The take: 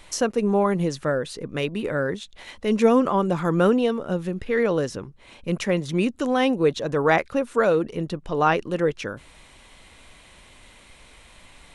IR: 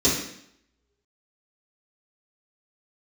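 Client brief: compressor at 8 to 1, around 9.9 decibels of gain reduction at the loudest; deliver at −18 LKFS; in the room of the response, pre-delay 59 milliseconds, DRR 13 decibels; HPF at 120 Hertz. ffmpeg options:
-filter_complex "[0:a]highpass=120,acompressor=threshold=-23dB:ratio=8,asplit=2[link_01][link_02];[1:a]atrim=start_sample=2205,adelay=59[link_03];[link_02][link_03]afir=irnorm=-1:irlink=0,volume=-28.5dB[link_04];[link_01][link_04]amix=inputs=2:normalize=0,volume=10dB"

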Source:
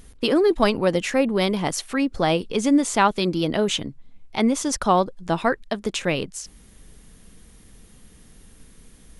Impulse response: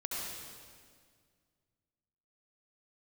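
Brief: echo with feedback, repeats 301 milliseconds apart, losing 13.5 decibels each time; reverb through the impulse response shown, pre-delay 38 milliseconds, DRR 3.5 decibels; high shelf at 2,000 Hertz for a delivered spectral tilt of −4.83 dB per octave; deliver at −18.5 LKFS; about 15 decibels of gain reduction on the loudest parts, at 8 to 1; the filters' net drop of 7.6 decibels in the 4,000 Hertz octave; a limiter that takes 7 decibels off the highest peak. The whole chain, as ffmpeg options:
-filter_complex "[0:a]highshelf=frequency=2000:gain=-3,equalizer=frequency=4000:width_type=o:gain=-7.5,acompressor=threshold=-30dB:ratio=8,alimiter=level_in=1.5dB:limit=-24dB:level=0:latency=1,volume=-1.5dB,aecho=1:1:301|602:0.211|0.0444,asplit=2[link_01][link_02];[1:a]atrim=start_sample=2205,adelay=38[link_03];[link_02][link_03]afir=irnorm=-1:irlink=0,volume=-6.5dB[link_04];[link_01][link_04]amix=inputs=2:normalize=0,volume=16.5dB"

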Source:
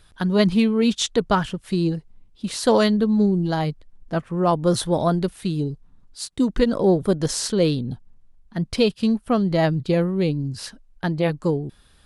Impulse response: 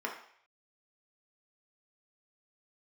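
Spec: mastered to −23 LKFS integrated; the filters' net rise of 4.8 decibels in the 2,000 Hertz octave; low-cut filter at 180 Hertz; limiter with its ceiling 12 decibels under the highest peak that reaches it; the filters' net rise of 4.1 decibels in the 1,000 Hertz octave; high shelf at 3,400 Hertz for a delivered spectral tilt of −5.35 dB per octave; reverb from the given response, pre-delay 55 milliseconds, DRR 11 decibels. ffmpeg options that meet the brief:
-filter_complex "[0:a]highpass=180,equalizer=frequency=1000:width_type=o:gain=4.5,equalizer=frequency=2000:width_type=o:gain=6.5,highshelf=frequency=3400:gain=-6.5,alimiter=limit=-15dB:level=0:latency=1,asplit=2[link_01][link_02];[1:a]atrim=start_sample=2205,adelay=55[link_03];[link_02][link_03]afir=irnorm=-1:irlink=0,volume=-16dB[link_04];[link_01][link_04]amix=inputs=2:normalize=0,volume=2.5dB"

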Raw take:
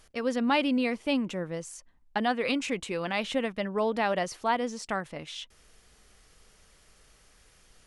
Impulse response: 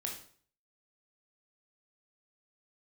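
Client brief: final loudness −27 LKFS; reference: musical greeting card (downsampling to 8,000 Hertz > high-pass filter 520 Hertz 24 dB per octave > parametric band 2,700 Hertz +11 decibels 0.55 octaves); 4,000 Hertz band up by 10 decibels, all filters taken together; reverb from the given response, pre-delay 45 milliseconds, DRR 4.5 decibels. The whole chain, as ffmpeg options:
-filter_complex "[0:a]equalizer=frequency=4000:width_type=o:gain=4.5,asplit=2[link_01][link_02];[1:a]atrim=start_sample=2205,adelay=45[link_03];[link_02][link_03]afir=irnorm=-1:irlink=0,volume=-4.5dB[link_04];[link_01][link_04]amix=inputs=2:normalize=0,aresample=8000,aresample=44100,highpass=frequency=520:width=0.5412,highpass=frequency=520:width=1.3066,equalizer=frequency=2700:width_type=o:width=0.55:gain=11,volume=-1.5dB"

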